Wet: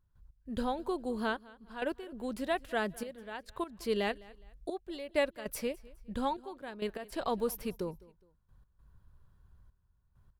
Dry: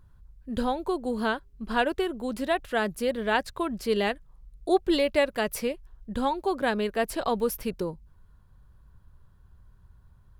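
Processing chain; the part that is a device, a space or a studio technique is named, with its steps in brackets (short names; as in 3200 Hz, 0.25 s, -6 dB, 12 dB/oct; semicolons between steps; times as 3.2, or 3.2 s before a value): trance gate with a delay (step gate ".x.xxxxxx.." 99 bpm -12 dB; feedback echo 0.207 s, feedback 34%, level -22 dB); gain -6 dB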